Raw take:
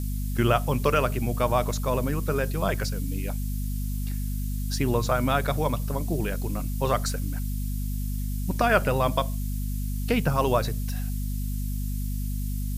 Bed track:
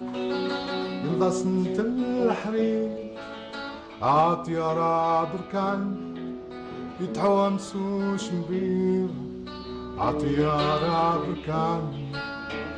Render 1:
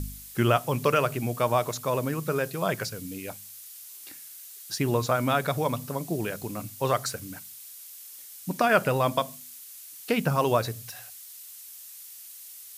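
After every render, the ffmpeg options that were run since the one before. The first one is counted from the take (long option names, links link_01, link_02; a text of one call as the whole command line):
ffmpeg -i in.wav -af "bandreject=frequency=50:width_type=h:width=4,bandreject=frequency=100:width_type=h:width=4,bandreject=frequency=150:width_type=h:width=4,bandreject=frequency=200:width_type=h:width=4,bandreject=frequency=250:width_type=h:width=4" out.wav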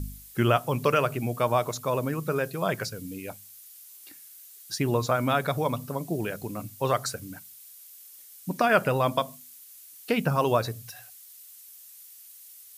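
ffmpeg -i in.wav -af "afftdn=noise_reduction=6:noise_floor=-45" out.wav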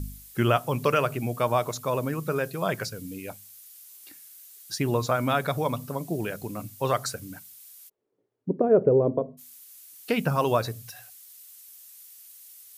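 ffmpeg -i in.wav -filter_complex "[0:a]asplit=3[link_01][link_02][link_03];[link_01]afade=type=out:start_time=7.88:duration=0.02[link_04];[link_02]lowpass=frequency=420:width_type=q:width=4.7,afade=type=in:start_time=7.88:duration=0.02,afade=type=out:start_time=9.37:duration=0.02[link_05];[link_03]afade=type=in:start_time=9.37:duration=0.02[link_06];[link_04][link_05][link_06]amix=inputs=3:normalize=0" out.wav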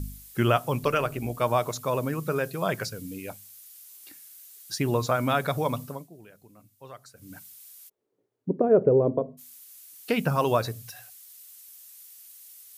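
ffmpeg -i in.wav -filter_complex "[0:a]asettb=1/sr,asplit=3[link_01][link_02][link_03];[link_01]atrim=end=0.794[link_04];[link_02]atrim=start=0.79:end=1.42,asetpts=PTS-STARTPTS,afade=type=in:duration=0.004:curve=qsin,afade=type=out:start_time=0.626:duration=0.004:curve=qsin,tremolo=f=170:d=0.462[link_05];[link_03]atrim=start=1.416[link_06];[link_04][link_05]acrossfade=duration=0.004:curve1=hsin:curve2=qsin[link_07];[link_07][link_06]acrossfade=duration=0.004:curve1=qsin:curve2=hsin,asplit=3[link_08][link_09][link_10];[link_08]atrim=end=6.09,asetpts=PTS-STARTPTS,afade=type=out:start_time=5.8:duration=0.29:silence=0.105925[link_11];[link_09]atrim=start=6.09:end=7.14,asetpts=PTS-STARTPTS,volume=-19.5dB[link_12];[link_10]atrim=start=7.14,asetpts=PTS-STARTPTS,afade=type=in:duration=0.29:silence=0.105925[link_13];[link_11][link_12][link_13]concat=n=3:v=0:a=1" out.wav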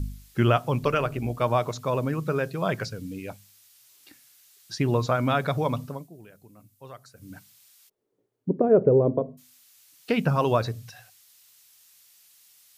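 ffmpeg -i in.wav -filter_complex "[0:a]acrossover=split=6400[link_01][link_02];[link_02]acompressor=threshold=-57dB:ratio=4:attack=1:release=60[link_03];[link_01][link_03]amix=inputs=2:normalize=0,lowshelf=frequency=220:gain=4.5" out.wav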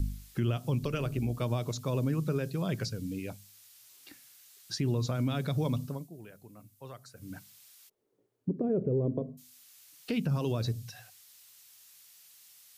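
ffmpeg -i in.wav -filter_complex "[0:a]acrossover=split=380|3000[link_01][link_02][link_03];[link_02]acompressor=threshold=-50dB:ratio=2[link_04];[link_01][link_04][link_03]amix=inputs=3:normalize=0,alimiter=limit=-21.5dB:level=0:latency=1:release=104" out.wav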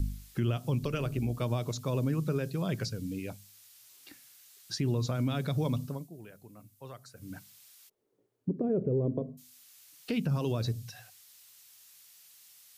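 ffmpeg -i in.wav -af anull out.wav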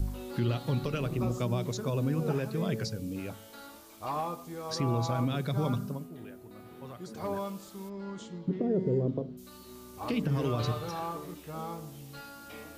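ffmpeg -i in.wav -i bed.wav -filter_complex "[1:a]volume=-13.5dB[link_01];[0:a][link_01]amix=inputs=2:normalize=0" out.wav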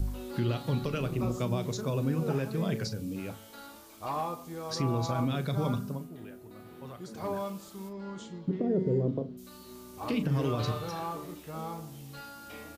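ffmpeg -i in.wav -filter_complex "[0:a]asplit=2[link_01][link_02];[link_02]adelay=37,volume=-12dB[link_03];[link_01][link_03]amix=inputs=2:normalize=0" out.wav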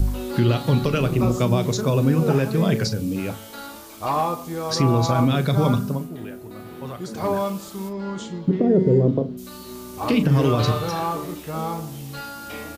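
ffmpeg -i in.wav -af "volume=11dB" out.wav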